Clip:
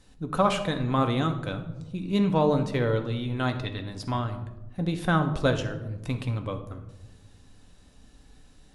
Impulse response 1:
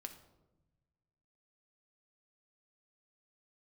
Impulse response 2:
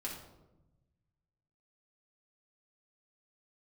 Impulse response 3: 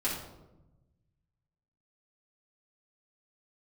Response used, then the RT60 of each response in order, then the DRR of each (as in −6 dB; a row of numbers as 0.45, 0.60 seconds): 1; 1.1, 1.0, 1.0 seconds; 5.5, −4.0, −8.5 decibels